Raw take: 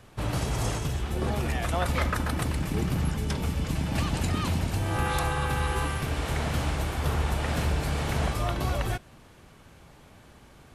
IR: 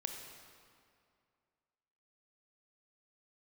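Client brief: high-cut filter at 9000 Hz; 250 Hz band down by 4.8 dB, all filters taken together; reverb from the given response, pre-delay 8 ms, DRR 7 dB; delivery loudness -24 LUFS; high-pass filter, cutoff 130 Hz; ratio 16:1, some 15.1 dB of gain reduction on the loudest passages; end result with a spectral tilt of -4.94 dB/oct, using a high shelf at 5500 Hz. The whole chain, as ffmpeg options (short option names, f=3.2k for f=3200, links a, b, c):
-filter_complex "[0:a]highpass=130,lowpass=9k,equalizer=f=250:t=o:g=-6,highshelf=f=5.5k:g=-4,acompressor=threshold=-41dB:ratio=16,asplit=2[a][b];[1:a]atrim=start_sample=2205,adelay=8[c];[b][c]afir=irnorm=-1:irlink=0,volume=-6.5dB[d];[a][d]amix=inputs=2:normalize=0,volume=20.5dB"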